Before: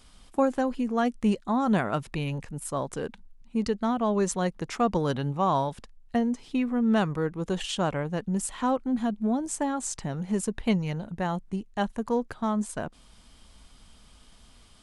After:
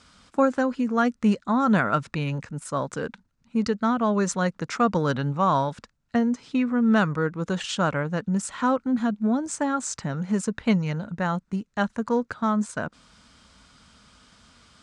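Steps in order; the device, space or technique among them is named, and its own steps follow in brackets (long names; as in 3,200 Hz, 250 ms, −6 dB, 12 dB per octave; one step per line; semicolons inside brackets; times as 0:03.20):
car door speaker (loudspeaker in its box 90–7,800 Hz, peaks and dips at 370 Hz −6 dB, 760 Hz −5 dB, 1,400 Hz +7 dB, 3,100 Hz −4 dB)
level +4 dB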